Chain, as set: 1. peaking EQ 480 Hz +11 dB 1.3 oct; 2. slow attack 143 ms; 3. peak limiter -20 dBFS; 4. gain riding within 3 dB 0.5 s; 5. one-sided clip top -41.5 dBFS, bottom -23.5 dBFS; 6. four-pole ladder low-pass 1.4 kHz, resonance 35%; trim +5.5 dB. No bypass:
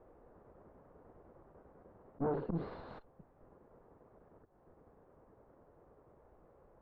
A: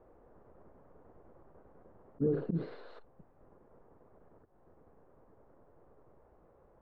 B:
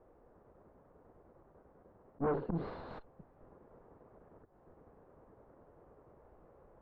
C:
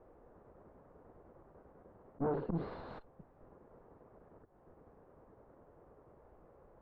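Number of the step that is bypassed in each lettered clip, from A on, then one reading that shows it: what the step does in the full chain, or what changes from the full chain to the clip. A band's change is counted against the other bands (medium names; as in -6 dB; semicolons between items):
5, distortion -6 dB; 3, momentary loudness spread change -1 LU; 4, momentary loudness spread change -2 LU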